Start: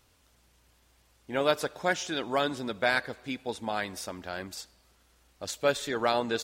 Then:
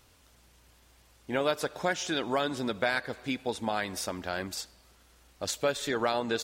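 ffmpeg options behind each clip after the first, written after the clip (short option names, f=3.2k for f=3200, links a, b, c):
-af "acompressor=threshold=-31dB:ratio=2.5,volume=4dB"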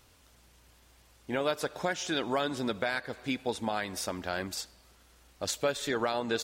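-af "alimiter=limit=-18dB:level=0:latency=1:release=315"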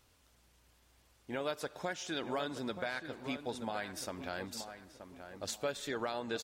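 -filter_complex "[0:a]asplit=2[a][b];[b]adelay=927,lowpass=f=1.9k:p=1,volume=-9dB,asplit=2[c][d];[d]adelay=927,lowpass=f=1.9k:p=1,volume=0.36,asplit=2[e][f];[f]adelay=927,lowpass=f=1.9k:p=1,volume=0.36,asplit=2[g][h];[h]adelay=927,lowpass=f=1.9k:p=1,volume=0.36[i];[a][c][e][g][i]amix=inputs=5:normalize=0,volume=-7dB"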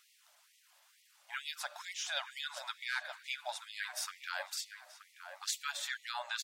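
-af "afftfilt=real='re*gte(b*sr/1024,520*pow(1900/520,0.5+0.5*sin(2*PI*2.2*pts/sr)))':imag='im*gte(b*sr/1024,520*pow(1900/520,0.5+0.5*sin(2*PI*2.2*pts/sr)))':win_size=1024:overlap=0.75,volume=4.5dB"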